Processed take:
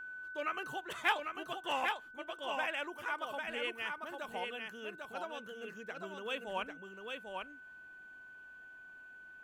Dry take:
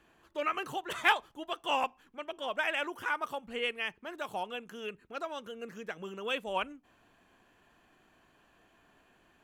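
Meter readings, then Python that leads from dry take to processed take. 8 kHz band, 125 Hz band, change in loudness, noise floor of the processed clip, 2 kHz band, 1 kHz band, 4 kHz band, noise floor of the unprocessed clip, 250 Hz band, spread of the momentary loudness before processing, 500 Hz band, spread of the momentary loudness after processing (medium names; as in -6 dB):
-4.0 dB, -4.0 dB, -4.5 dB, -54 dBFS, -3.0 dB, -4.0 dB, -4.0 dB, -67 dBFS, -4.0 dB, 13 LU, -4.0 dB, 18 LU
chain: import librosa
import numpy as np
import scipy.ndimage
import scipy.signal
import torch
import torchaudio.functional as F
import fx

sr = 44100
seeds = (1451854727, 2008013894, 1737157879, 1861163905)

p1 = x + 10.0 ** (-38.0 / 20.0) * np.sin(2.0 * np.pi * 1500.0 * np.arange(len(x)) / sr)
p2 = p1 + fx.echo_single(p1, sr, ms=797, db=-4.5, dry=0)
y = F.gain(torch.from_numpy(p2), -5.5).numpy()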